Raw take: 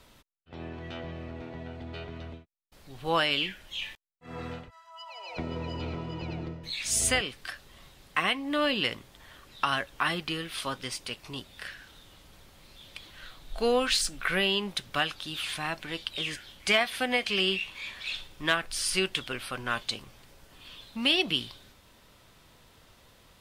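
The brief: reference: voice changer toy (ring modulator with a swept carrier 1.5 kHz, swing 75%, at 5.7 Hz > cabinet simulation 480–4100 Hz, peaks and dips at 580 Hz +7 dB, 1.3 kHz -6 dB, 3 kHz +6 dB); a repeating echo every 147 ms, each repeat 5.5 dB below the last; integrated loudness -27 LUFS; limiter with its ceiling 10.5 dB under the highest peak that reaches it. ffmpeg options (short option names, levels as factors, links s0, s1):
-af "alimiter=limit=0.1:level=0:latency=1,aecho=1:1:147|294|441|588|735|882|1029:0.531|0.281|0.149|0.079|0.0419|0.0222|0.0118,aeval=exprs='val(0)*sin(2*PI*1500*n/s+1500*0.75/5.7*sin(2*PI*5.7*n/s))':c=same,highpass=480,equalizer=f=580:t=q:w=4:g=7,equalizer=f=1300:t=q:w=4:g=-6,equalizer=f=3000:t=q:w=4:g=6,lowpass=f=4100:w=0.5412,lowpass=f=4100:w=1.3066,volume=2.51"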